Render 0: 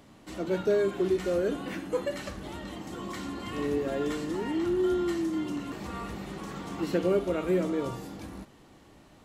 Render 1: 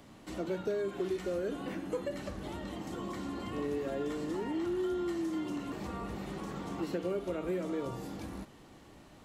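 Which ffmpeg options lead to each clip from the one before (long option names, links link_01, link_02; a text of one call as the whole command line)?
ffmpeg -i in.wav -filter_complex "[0:a]acrossover=split=400|920[link_01][link_02][link_03];[link_01]acompressor=threshold=-38dB:ratio=4[link_04];[link_02]acompressor=threshold=-38dB:ratio=4[link_05];[link_03]acompressor=threshold=-49dB:ratio=4[link_06];[link_04][link_05][link_06]amix=inputs=3:normalize=0" out.wav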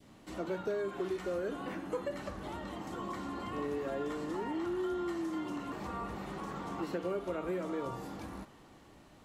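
ffmpeg -i in.wav -af "adynamicequalizer=threshold=0.00224:dfrequency=1100:dqfactor=0.9:tfrequency=1100:tqfactor=0.9:attack=5:release=100:ratio=0.375:range=3.5:mode=boostabove:tftype=bell,volume=-3dB" out.wav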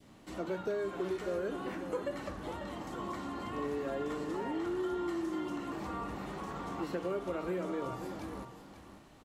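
ffmpeg -i in.wav -af "aecho=1:1:543:0.316" out.wav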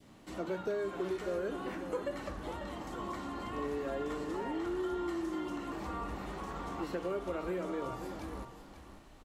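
ffmpeg -i in.wav -af "asubboost=boost=4:cutoff=59" out.wav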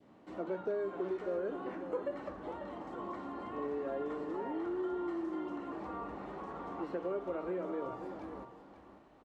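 ffmpeg -i in.wav -af "bandpass=frequency=530:width_type=q:width=0.55:csg=0" out.wav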